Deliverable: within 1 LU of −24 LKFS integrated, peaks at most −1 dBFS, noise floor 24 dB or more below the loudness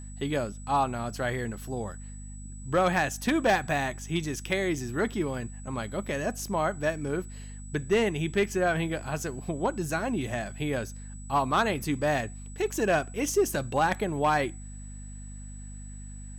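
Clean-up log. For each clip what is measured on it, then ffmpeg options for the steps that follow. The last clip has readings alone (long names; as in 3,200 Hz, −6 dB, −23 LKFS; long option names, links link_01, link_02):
mains hum 50 Hz; hum harmonics up to 250 Hz; level of the hum −39 dBFS; interfering tone 7,900 Hz; level of the tone −49 dBFS; integrated loudness −29.0 LKFS; sample peak −16.0 dBFS; target loudness −24.0 LKFS
→ -af "bandreject=frequency=50:width_type=h:width=6,bandreject=frequency=100:width_type=h:width=6,bandreject=frequency=150:width_type=h:width=6,bandreject=frequency=200:width_type=h:width=6,bandreject=frequency=250:width_type=h:width=6"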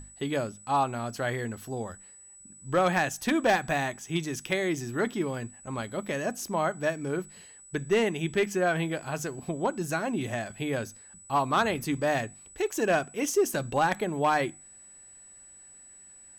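mains hum none found; interfering tone 7,900 Hz; level of the tone −49 dBFS
→ -af "bandreject=frequency=7900:width=30"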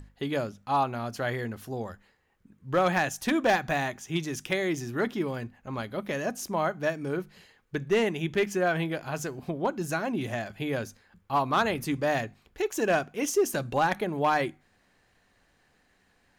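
interfering tone none found; integrated loudness −29.0 LKFS; sample peak −15.5 dBFS; target loudness −24.0 LKFS
→ -af "volume=5dB"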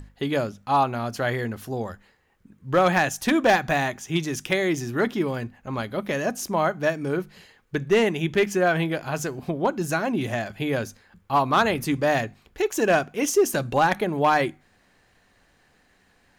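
integrated loudness −24.0 LKFS; sample peak −10.5 dBFS; background noise floor −62 dBFS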